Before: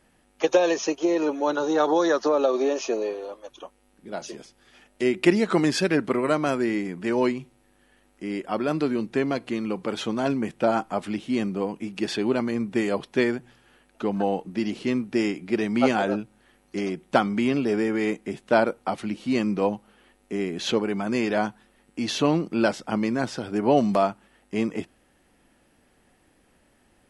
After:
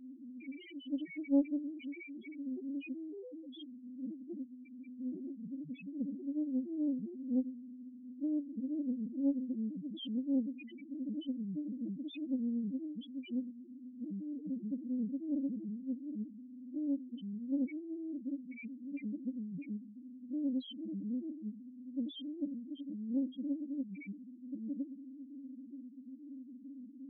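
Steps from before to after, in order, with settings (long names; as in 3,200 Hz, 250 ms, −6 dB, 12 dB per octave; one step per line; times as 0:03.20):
power curve on the samples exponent 0.5
wave folding −18.5 dBFS
formant filter i
spectral peaks only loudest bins 1
highs frequency-modulated by the lows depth 0.31 ms
level +2.5 dB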